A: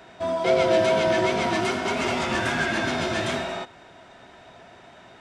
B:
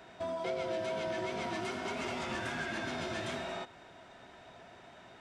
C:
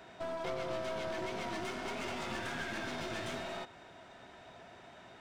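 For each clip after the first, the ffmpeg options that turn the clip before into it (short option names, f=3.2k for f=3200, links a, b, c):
-af "acompressor=threshold=-30dB:ratio=3,volume=-6dB"
-af "aeval=exprs='clip(val(0),-1,0.00841)':c=same"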